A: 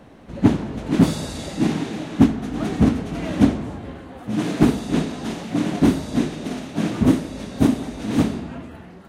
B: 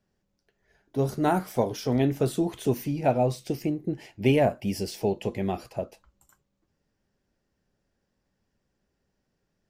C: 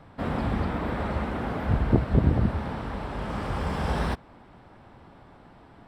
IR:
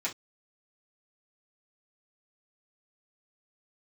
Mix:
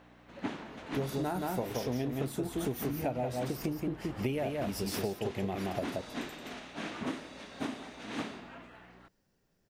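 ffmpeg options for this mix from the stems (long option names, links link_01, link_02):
-filter_complex "[0:a]aeval=exprs='val(0)+0.0224*(sin(2*PI*60*n/s)+sin(2*PI*2*60*n/s)/2+sin(2*PI*3*60*n/s)/3+sin(2*PI*4*60*n/s)/4+sin(2*PI*5*60*n/s)/5)':channel_layout=same,bandpass=frequency=2000:width_type=q:width=0.59:csg=0,volume=-6dB[link_01];[1:a]highshelf=frequency=12000:gain=10.5,volume=0dB,asplit=2[link_02][link_03];[link_03]volume=-4.5dB[link_04];[2:a]acompressor=threshold=-35dB:ratio=3,adelay=750,volume=-9dB[link_05];[link_04]aecho=0:1:175:1[link_06];[link_01][link_02][link_05][link_06]amix=inputs=4:normalize=0,acompressor=threshold=-30dB:ratio=10"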